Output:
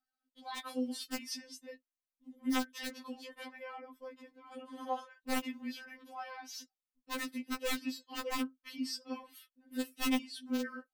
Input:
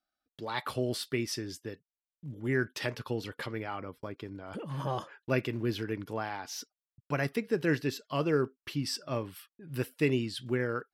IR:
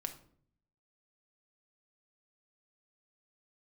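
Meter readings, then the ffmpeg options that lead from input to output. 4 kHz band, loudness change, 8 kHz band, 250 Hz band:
−2.0 dB, −5.5 dB, −1.5 dB, −3.5 dB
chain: -af "aeval=exprs='(mod(8.41*val(0)+1,2)-1)/8.41':channel_layout=same,afftfilt=real='re*3.46*eq(mod(b,12),0)':imag='im*3.46*eq(mod(b,12),0)':win_size=2048:overlap=0.75,volume=-3.5dB"

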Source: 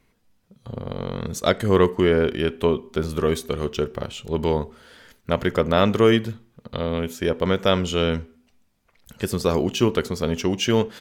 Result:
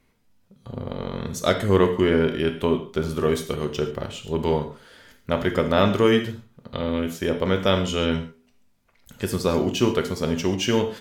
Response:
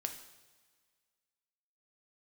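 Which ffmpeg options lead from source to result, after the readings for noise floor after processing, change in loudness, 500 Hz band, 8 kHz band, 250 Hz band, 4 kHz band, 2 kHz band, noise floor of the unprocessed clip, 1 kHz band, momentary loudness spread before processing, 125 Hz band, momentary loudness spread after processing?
−62 dBFS, −1.0 dB, −1.0 dB, −0.5 dB, 0.0 dB, −1.0 dB, −0.5 dB, −64 dBFS, −0.5 dB, 13 LU, −1.0 dB, 13 LU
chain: -filter_complex "[1:a]atrim=start_sample=2205,atrim=end_sample=6615[link_01];[0:a][link_01]afir=irnorm=-1:irlink=0"

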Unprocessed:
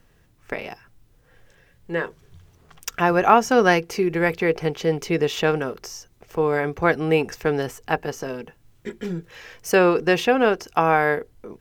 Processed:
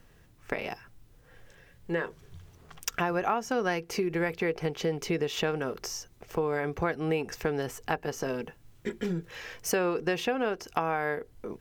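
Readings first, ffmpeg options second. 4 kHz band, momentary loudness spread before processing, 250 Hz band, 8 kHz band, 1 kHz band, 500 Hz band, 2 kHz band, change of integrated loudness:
−6.0 dB, 17 LU, −8.5 dB, −3.0 dB, −11.0 dB, −9.5 dB, −9.5 dB, −10.0 dB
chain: -af "acompressor=threshold=-27dB:ratio=4"

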